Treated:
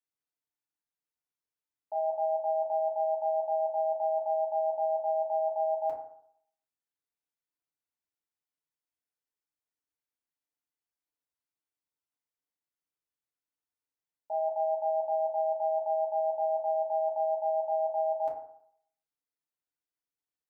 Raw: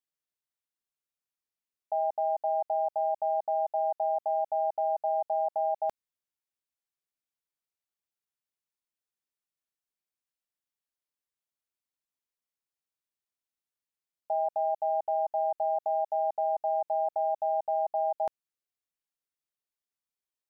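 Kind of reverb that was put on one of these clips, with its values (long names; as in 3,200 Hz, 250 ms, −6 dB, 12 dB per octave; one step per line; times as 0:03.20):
feedback delay network reverb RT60 0.68 s, low-frequency decay 0.9×, high-frequency decay 0.3×, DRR −4.5 dB
level −8.5 dB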